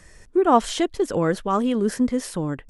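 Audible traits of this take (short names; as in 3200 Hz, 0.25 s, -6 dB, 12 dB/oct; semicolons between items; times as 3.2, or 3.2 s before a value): noise floor -50 dBFS; spectral tilt -5.5 dB/oct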